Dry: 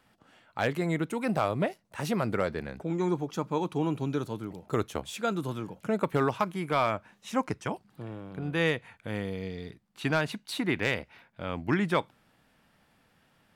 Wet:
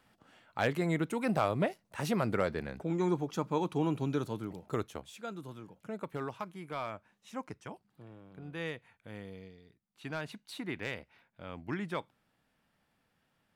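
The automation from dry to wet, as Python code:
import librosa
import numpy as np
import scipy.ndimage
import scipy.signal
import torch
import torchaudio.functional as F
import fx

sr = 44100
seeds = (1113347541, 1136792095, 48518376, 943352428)

y = fx.gain(x, sr, db=fx.line((4.56, -2.0), (5.15, -12.0), (9.38, -12.0), (9.63, -19.5), (10.26, -10.0)))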